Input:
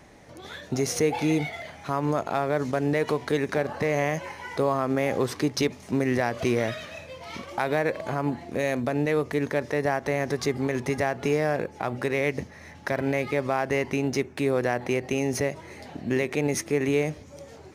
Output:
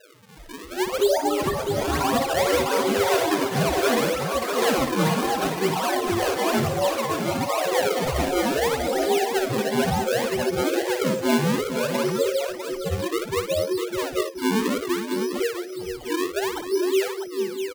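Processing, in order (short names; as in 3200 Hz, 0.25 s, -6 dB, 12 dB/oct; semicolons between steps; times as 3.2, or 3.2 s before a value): inharmonic rescaling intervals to 78%; HPF 370 Hz 24 dB/oct; in parallel at -0.5 dB: limiter -24 dBFS, peak gain reduction 8 dB; on the sum: loudest bins only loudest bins 2; decimation with a swept rate 39×, swing 160% 0.64 Hz; echoes that change speed 0.372 s, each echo +6 st, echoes 3; on a send: tapped delay 58/454/652 ms -9/-10.5/-7.5 dB; on the sum: mismatched tape noise reduction encoder only; gain +4 dB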